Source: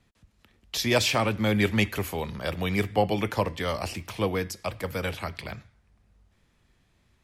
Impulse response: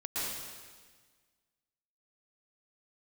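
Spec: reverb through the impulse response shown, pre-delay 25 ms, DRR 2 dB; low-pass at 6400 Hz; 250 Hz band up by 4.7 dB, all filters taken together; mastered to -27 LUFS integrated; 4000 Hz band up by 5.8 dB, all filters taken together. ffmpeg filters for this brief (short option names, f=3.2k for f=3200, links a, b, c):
-filter_complex "[0:a]lowpass=6.4k,equalizer=f=250:t=o:g=6,equalizer=f=4k:t=o:g=8,asplit=2[a][b];[1:a]atrim=start_sample=2205,adelay=25[c];[b][c]afir=irnorm=-1:irlink=0,volume=-7dB[d];[a][d]amix=inputs=2:normalize=0,volume=-5dB"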